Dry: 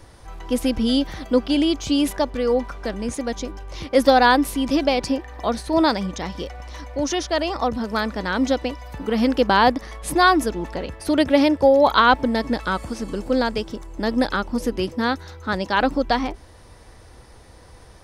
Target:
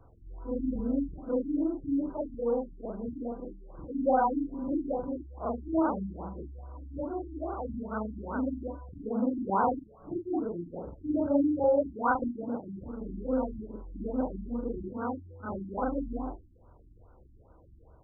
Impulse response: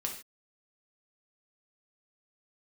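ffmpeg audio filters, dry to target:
-af "afftfilt=real='re':imag='-im':win_size=4096:overlap=0.75,afftfilt=real='re*lt(b*sr/1024,330*pow(1600/330,0.5+0.5*sin(2*PI*2.4*pts/sr)))':imag='im*lt(b*sr/1024,330*pow(1600/330,0.5+0.5*sin(2*PI*2.4*pts/sr)))':win_size=1024:overlap=0.75,volume=-5.5dB"

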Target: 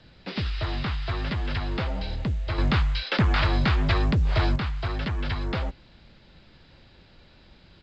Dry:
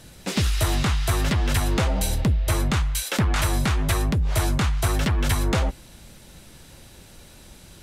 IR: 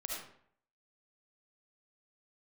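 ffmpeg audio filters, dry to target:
-filter_complex "[0:a]aresample=11025,aresample=44100,acrossover=split=280|1100|1800[link_01][link_02][link_03][link_04];[link_03]crystalizer=i=5:c=0[link_05];[link_01][link_02][link_05][link_04]amix=inputs=4:normalize=0,asettb=1/sr,asplit=3[link_06][link_07][link_08];[link_06]atrim=end=2.584[link_09];[link_07]atrim=start=2.58:end=4.56,asetpts=PTS-STARTPTS,afade=type=in:duration=0.004:curve=qsin,afade=type=out:start_time=1.976:duration=0.004:curve=qsin,acontrast=76[link_10];[link_08]atrim=start=4.556[link_11];[link_09][link_10]acrossfade=duration=0.004:curve1=hsin:curve2=qsin[link_12];[link_12][link_11]acrossfade=duration=0.004:curve1=qsin:curve2=hsin,volume=-6.5dB" -ar 16000 -c:a pcm_mulaw

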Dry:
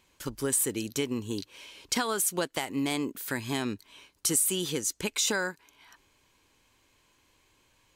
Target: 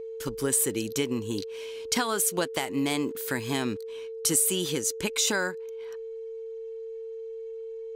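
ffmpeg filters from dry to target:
ffmpeg -i in.wav -filter_complex "[0:a]asettb=1/sr,asplit=3[link_01][link_02][link_03];[link_01]atrim=end=2.984[link_04];[link_02]atrim=start=2.98:end=3.88,asetpts=PTS-STARTPTS,afade=type=in:duration=0.004:curve=qsin,afade=type=out:start_time=0.896:duration=0.004:curve=qsin,aeval=exprs='val(0)*gte(abs(val(0)),0.002)':channel_layout=same[link_05];[link_03]atrim=start=3.876[link_06];[link_04][link_05]acrossfade=duration=0.004:curve1=hsin:curve2=qsin[link_07];[link_07][link_06]acrossfade=duration=0.004:curve1=qsin:curve2=hsin,aeval=exprs='val(0)+0.0141*sin(2*PI*450*n/s)':channel_layout=same,anlmdn=0.001,volume=2dB" out.wav

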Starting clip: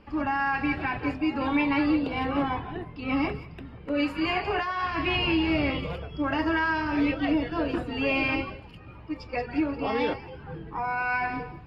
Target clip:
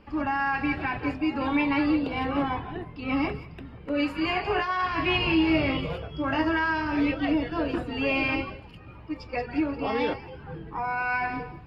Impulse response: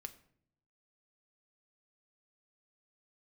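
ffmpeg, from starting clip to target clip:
-filter_complex "[0:a]asettb=1/sr,asplit=3[link_01][link_02][link_03];[link_01]atrim=end=4.444[link_04];[link_02]atrim=start=4.44:end=6.48,asetpts=PTS-STARTPTS,afade=type=in:duration=0.004:curve=qsin,afade=type=out:start_time=2.036:duration=0.004:curve=qsin,asplit=2[link_05][link_06];[link_06]adelay=19,volume=-5.5dB[link_07];[link_05][link_07]amix=inputs=2:normalize=0,atrim=end_sample=89964[link_08];[link_03]atrim=start=6.476[link_09];[link_04][link_08]acrossfade=duration=0.004:curve1=hsin:curve2=qsin[link_10];[link_10][link_09]acrossfade=duration=0.004:curve1=qsin:curve2=hsin"

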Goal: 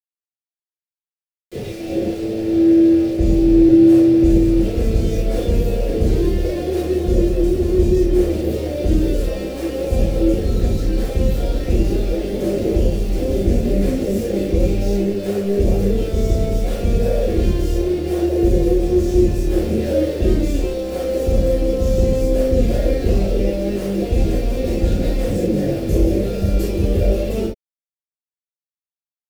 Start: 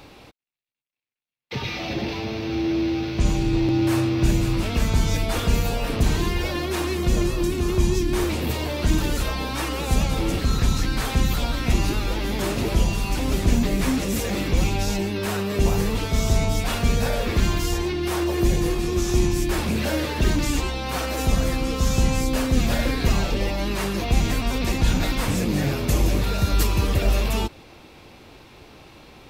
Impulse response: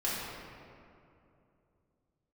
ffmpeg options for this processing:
-filter_complex "[0:a]aeval=exprs='val(0)*gte(abs(val(0)),0.0422)':channel_layout=same,lowshelf=frequency=710:width_type=q:width=3:gain=11[link_01];[1:a]atrim=start_sample=2205,atrim=end_sample=3087[link_02];[link_01][link_02]afir=irnorm=-1:irlink=0,volume=-10.5dB"

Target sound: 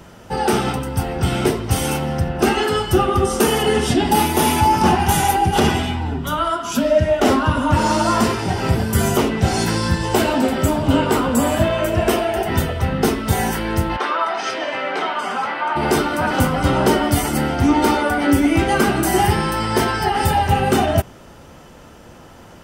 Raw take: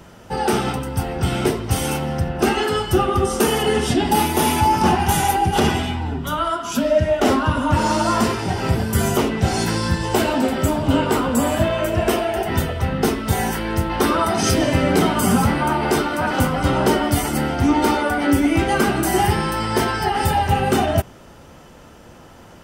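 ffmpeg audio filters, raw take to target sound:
ffmpeg -i in.wav -filter_complex "[0:a]asplit=3[link_01][link_02][link_03];[link_01]afade=type=out:start_time=13.96:duration=0.02[link_04];[link_02]highpass=720,lowpass=3100,afade=type=in:start_time=13.96:duration=0.02,afade=type=out:start_time=15.75:duration=0.02[link_05];[link_03]afade=type=in:start_time=15.75:duration=0.02[link_06];[link_04][link_05][link_06]amix=inputs=3:normalize=0,volume=1.5dB" out.wav

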